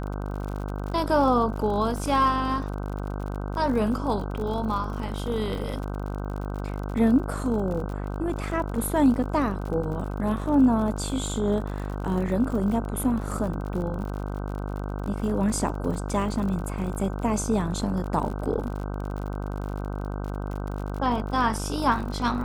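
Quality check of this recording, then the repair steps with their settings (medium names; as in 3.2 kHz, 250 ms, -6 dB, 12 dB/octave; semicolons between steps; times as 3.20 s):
buzz 50 Hz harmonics 31 -31 dBFS
crackle 54 per s -33 dBFS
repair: de-click; de-hum 50 Hz, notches 31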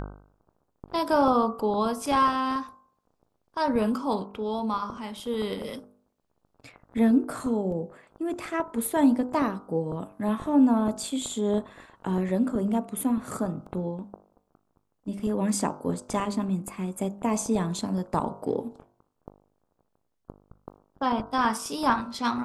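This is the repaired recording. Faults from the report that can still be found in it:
nothing left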